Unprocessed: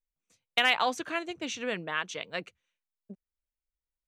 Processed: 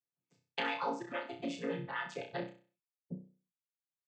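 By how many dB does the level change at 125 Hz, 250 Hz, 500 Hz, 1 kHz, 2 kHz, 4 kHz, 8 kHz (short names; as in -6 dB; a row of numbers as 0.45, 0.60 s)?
+2.5, -2.0, -4.5, -7.0, -11.0, -13.5, -16.0 dB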